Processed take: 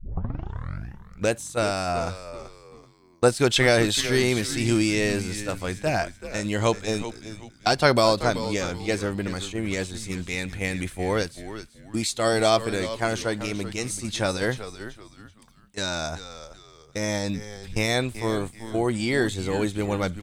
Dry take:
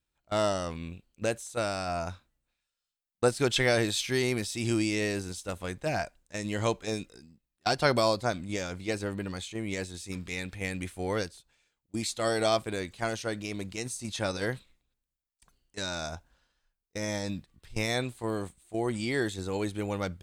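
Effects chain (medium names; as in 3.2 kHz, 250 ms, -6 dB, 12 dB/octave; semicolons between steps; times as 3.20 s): tape start-up on the opening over 1.31 s; frequency-shifting echo 382 ms, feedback 33%, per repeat -110 Hz, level -12 dB; trim +6 dB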